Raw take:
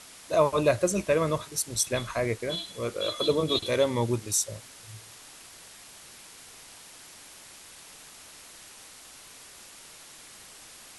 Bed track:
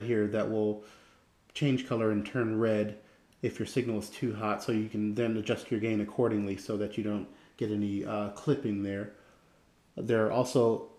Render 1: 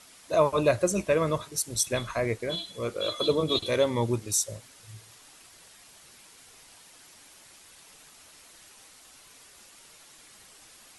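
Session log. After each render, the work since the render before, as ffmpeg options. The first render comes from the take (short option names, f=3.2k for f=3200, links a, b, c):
-af "afftdn=nr=6:nf=-49"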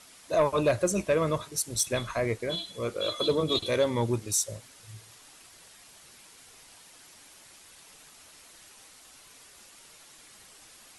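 -af "asoftclip=type=tanh:threshold=-14.5dB"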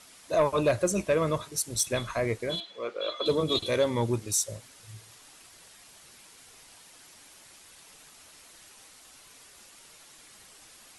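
-filter_complex "[0:a]asettb=1/sr,asplit=3[a][b][c];[a]atrim=end=2.604[d];[b]atrim=start=2.6:end=3.26,asetpts=PTS-STARTPTS,afade=t=in:d=0.004:c=qsin,afade=t=out:st=0.656:d=0.004:c=qsin,highpass=420,lowpass=3.4k[e];[c]atrim=start=3.256[f];[d][e]acrossfade=d=0.004:c1=hsin:c2=qsin[g];[g][f]acrossfade=d=0.004:c1=qsin:c2=hsin"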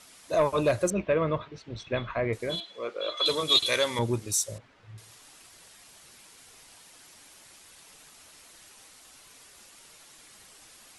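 -filter_complex "[0:a]asettb=1/sr,asplit=3[a][b][c];[a]atrim=end=0.904[d];[b]atrim=start=0.9:end=2.33,asetpts=PTS-STARTPTS,afade=t=in:d=0.004:c=qsin,afade=t=out:st=1.426:d=0.004:c=qsin,lowpass=f=3.2k:w=0.5412,lowpass=f=3.2k:w=1.3066[e];[c]atrim=start=2.326[f];[d][e]acrossfade=d=0.004:c1=hsin:c2=qsin[g];[g][f]acrossfade=d=0.004:c1=qsin:c2=hsin,asettb=1/sr,asplit=3[h][i][j];[h]atrim=end=3.174[k];[i]atrim=start=3.17:end=3.99,asetpts=PTS-STARTPTS,afade=t=in:d=0.004:c=qsin,afade=t=out:st=0.816:d=0.004:c=qsin,tiltshelf=f=760:g=-9.5[l];[j]atrim=start=3.986[m];[k][l]acrossfade=d=0.004:c1=hsin:c2=qsin[n];[n][m]acrossfade=d=0.004:c1=qsin:c2=hsin,asettb=1/sr,asplit=3[o][p][q];[o]atrim=end=4.584[r];[p]atrim=start=4.58:end=4.98,asetpts=PTS-STARTPTS,afade=t=in:d=0.004:c=qsin,afade=t=out:st=0.396:d=0.004:c=qsin,lowpass=2.1k[s];[q]atrim=start=4.976[t];[r][s]acrossfade=d=0.004:c1=hsin:c2=qsin[u];[u][t]acrossfade=d=0.004:c1=qsin:c2=hsin"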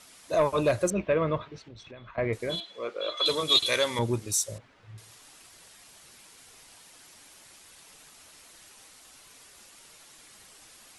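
-filter_complex "[0:a]asettb=1/sr,asplit=3[a][b][c];[a]atrim=end=1.654[d];[b]atrim=start=1.65:end=2.18,asetpts=PTS-STARTPTS,afade=t=in:d=0.004:c=qsin,afade=t=out:st=0.526:d=0.004:c=qsin,acompressor=threshold=-44dB:ratio=6:attack=3.2:release=140:knee=1:detection=peak[e];[c]atrim=start=2.176[f];[d][e]acrossfade=d=0.004:c1=hsin:c2=qsin[g];[g][f]acrossfade=d=0.004:c1=qsin:c2=hsin"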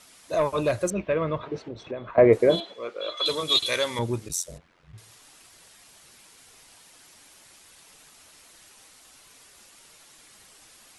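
-filter_complex "[0:a]asettb=1/sr,asplit=3[a][b][c];[a]atrim=end=1.434[d];[b]atrim=start=1.43:end=2.74,asetpts=PTS-STARTPTS,afade=t=in:d=0.004:c=qsin,afade=t=out:st=1.306:d=0.004:c=qsin,equalizer=f=460:t=o:w=2.9:g=15[e];[c]atrim=start=2.736[f];[d][e]acrossfade=d=0.004:c1=hsin:c2=qsin[g];[g][f]acrossfade=d=0.004:c1=qsin:c2=hsin,asplit=3[h][i][j];[h]afade=t=out:st=4.28:d=0.02[k];[i]aeval=exprs='val(0)*sin(2*PI*44*n/s)':c=same,afade=t=in:st=4.28:d=0.02,afade=t=out:st=4.92:d=0.02[l];[j]afade=t=in:st=4.92:d=0.02[m];[k][l][m]amix=inputs=3:normalize=0"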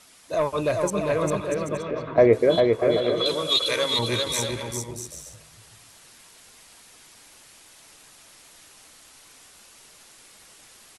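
-af "aecho=1:1:400|640|784|870.4|922.2:0.631|0.398|0.251|0.158|0.1"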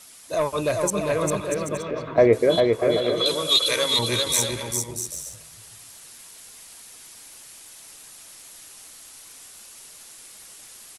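-af "crystalizer=i=1.5:c=0"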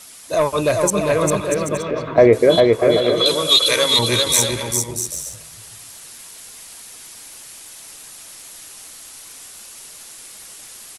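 -af "volume=6dB,alimiter=limit=-2dB:level=0:latency=1"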